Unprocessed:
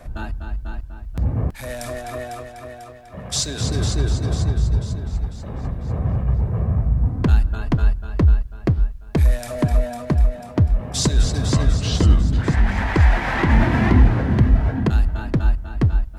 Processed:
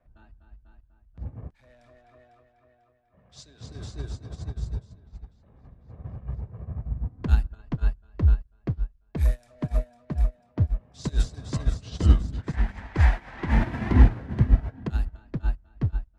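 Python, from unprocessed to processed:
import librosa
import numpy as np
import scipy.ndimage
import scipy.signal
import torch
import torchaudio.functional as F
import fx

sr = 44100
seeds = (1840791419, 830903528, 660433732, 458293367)

y = fx.env_lowpass(x, sr, base_hz=2500.0, full_db=-12.0)
y = fx.upward_expand(y, sr, threshold_db=-25.0, expansion=2.5)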